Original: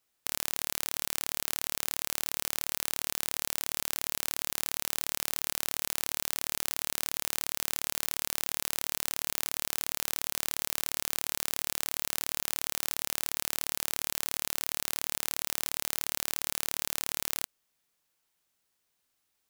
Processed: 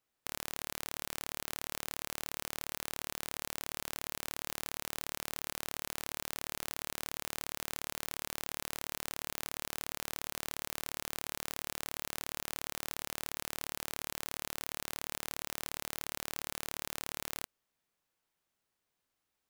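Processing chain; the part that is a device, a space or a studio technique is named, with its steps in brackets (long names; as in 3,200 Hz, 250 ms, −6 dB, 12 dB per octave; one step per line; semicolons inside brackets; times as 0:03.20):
behind a face mask (high-shelf EQ 2,700 Hz −8 dB)
level −1.5 dB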